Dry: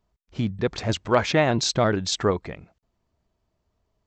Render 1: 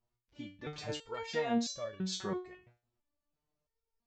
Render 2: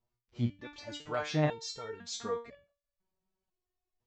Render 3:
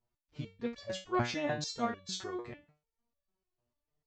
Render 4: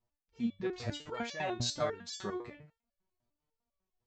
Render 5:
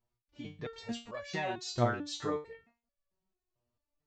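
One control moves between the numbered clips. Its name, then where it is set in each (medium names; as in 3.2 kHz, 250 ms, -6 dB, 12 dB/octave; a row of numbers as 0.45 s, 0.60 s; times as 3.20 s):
resonator arpeggio, rate: 3 Hz, 2 Hz, 6.7 Hz, 10 Hz, 4.5 Hz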